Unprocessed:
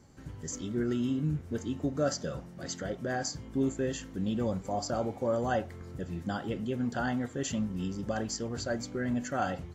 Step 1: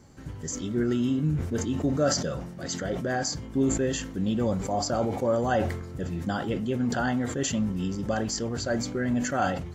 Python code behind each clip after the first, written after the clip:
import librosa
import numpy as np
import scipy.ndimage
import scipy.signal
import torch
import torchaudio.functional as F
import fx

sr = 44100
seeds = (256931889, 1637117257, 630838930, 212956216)

y = fx.sustainer(x, sr, db_per_s=59.0)
y = F.gain(torch.from_numpy(y), 4.5).numpy()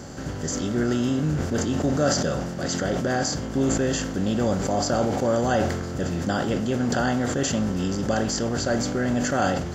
y = fx.bin_compress(x, sr, power=0.6)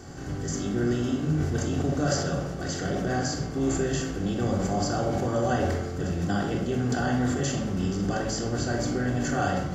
y = fx.room_shoebox(x, sr, seeds[0], volume_m3=2200.0, walls='furnished', distance_m=3.5)
y = F.gain(torch.from_numpy(y), -7.5).numpy()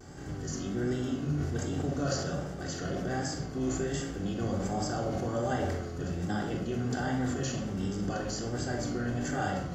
y = fx.vibrato(x, sr, rate_hz=1.3, depth_cents=68.0)
y = F.gain(torch.from_numpy(y), -5.5).numpy()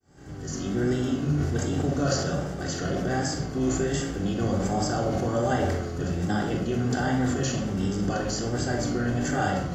y = fx.fade_in_head(x, sr, length_s=0.74)
y = F.gain(torch.from_numpy(y), 6.0).numpy()